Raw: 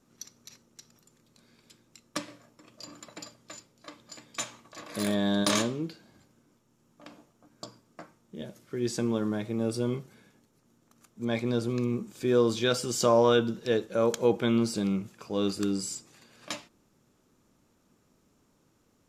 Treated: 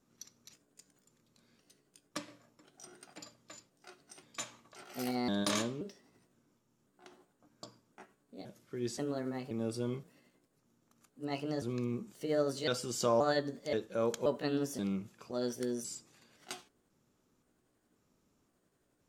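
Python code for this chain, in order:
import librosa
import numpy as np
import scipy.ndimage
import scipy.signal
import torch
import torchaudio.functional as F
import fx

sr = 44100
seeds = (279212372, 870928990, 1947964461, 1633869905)

y = fx.pitch_trill(x, sr, semitones=3.5, every_ms=528)
y = F.gain(torch.from_numpy(y), -7.0).numpy()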